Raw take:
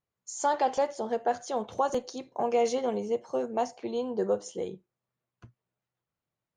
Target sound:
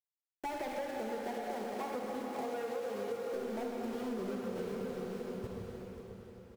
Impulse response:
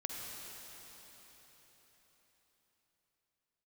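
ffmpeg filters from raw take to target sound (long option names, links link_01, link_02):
-filter_complex "[0:a]lowpass=3000,aemphasis=mode=reproduction:type=riaa,asoftclip=type=tanh:threshold=-25dB,flanger=delay=1.8:depth=3.4:regen=-26:speed=0.35:shape=sinusoidal,aeval=exprs='val(0)*gte(abs(val(0)),0.01)':channel_layout=same,asettb=1/sr,asplit=3[link_01][link_02][link_03];[link_01]atrim=end=0.734[link_04];[link_02]atrim=start=0.73:end=3.28,asetpts=PTS-STARTPTS,afade=type=in:duration=0.004:curve=qsin,afade=type=out:start_time=2.546:duration=0.004:curve=qsin,highpass=200[link_05];[link_03]atrim=start=3.276[link_06];[link_04][link_05]acrossfade=duration=0.004:curve1=hsin:curve2=qsin[link_07];[link_07][link_06]acrossfade=duration=0.004:curve1=qsin:curve2=hsin,aecho=1:1:537|1074|1611|2148:0.282|0.0986|0.0345|0.0121[link_08];[1:a]atrim=start_sample=2205[link_09];[link_08][link_09]afir=irnorm=-1:irlink=0,acompressor=threshold=-36dB:ratio=6,volume=1dB"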